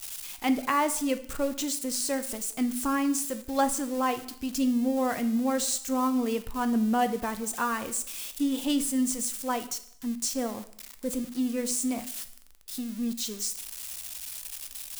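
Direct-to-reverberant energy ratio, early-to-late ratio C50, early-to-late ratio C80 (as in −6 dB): 10.0 dB, 14.0 dB, 17.0 dB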